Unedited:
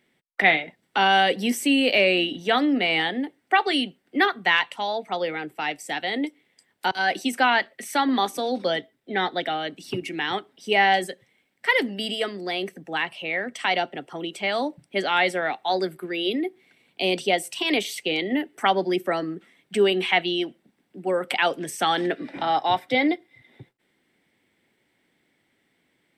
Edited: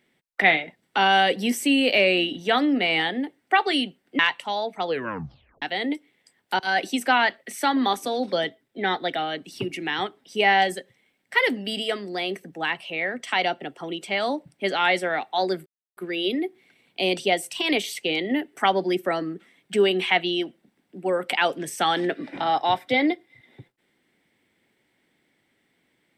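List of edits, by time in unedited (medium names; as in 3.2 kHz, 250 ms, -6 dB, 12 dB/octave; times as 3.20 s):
4.19–4.51 s: delete
5.18 s: tape stop 0.76 s
15.98 s: insert silence 0.31 s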